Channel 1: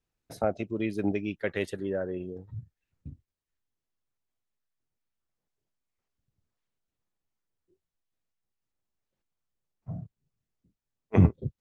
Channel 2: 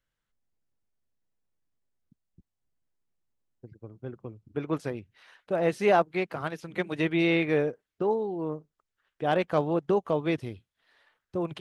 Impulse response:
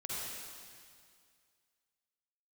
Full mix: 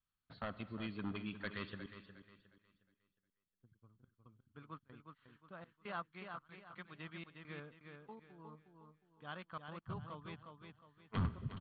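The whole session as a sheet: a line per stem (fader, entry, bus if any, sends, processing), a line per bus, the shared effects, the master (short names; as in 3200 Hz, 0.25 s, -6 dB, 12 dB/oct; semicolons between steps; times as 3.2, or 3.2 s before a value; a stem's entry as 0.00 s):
-1.0 dB, 0.00 s, muted 1.86–3.6, send -15 dB, echo send -11 dB, hard clip -22 dBFS, distortion -6 dB
-10.5 dB, 0.00 s, no send, echo send -6 dB, median filter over 9 samples; step gate ".x.xxxxx..xxxxx" 141 bpm -24 dB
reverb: on, RT60 2.1 s, pre-delay 43 ms
echo: feedback echo 0.36 s, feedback 33%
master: rippled Chebyshev low-pass 4500 Hz, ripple 9 dB; band shelf 520 Hz -11 dB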